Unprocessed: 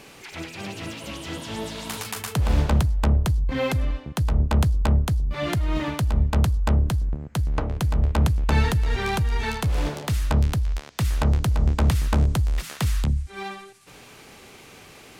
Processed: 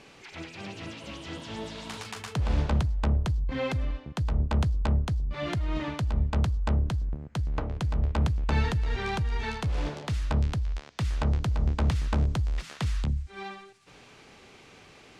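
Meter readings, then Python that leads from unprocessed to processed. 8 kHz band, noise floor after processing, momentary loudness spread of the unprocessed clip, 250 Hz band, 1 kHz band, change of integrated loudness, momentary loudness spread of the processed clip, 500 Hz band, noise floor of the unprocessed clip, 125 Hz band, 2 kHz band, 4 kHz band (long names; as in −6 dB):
−10.5 dB, −53 dBFS, 12 LU, −5.5 dB, −5.5 dB, −5.5 dB, 13 LU, −5.5 dB, −47 dBFS, −5.5 dB, −5.5 dB, −6.0 dB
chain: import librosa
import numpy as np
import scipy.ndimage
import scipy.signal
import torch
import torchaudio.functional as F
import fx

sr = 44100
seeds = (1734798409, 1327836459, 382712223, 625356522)

y = scipy.signal.sosfilt(scipy.signal.butter(2, 6200.0, 'lowpass', fs=sr, output='sos'), x)
y = F.gain(torch.from_numpy(y), -5.5).numpy()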